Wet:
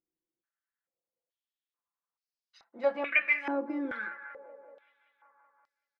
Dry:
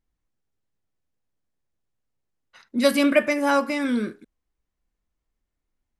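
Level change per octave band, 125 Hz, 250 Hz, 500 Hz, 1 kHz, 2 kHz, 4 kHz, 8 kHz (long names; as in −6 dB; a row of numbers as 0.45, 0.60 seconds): can't be measured, −14.5 dB, −10.5 dB, −11.5 dB, −2.0 dB, −17.5 dB, below −30 dB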